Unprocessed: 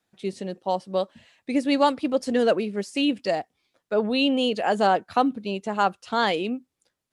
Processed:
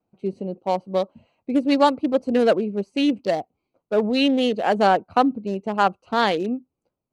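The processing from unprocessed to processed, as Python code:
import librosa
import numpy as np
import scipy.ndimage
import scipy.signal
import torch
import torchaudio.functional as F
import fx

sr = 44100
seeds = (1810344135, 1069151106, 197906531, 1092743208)

y = fx.wiener(x, sr, points=25)
y = F.gain(torch.from_numpy(y), 3.5).numpy()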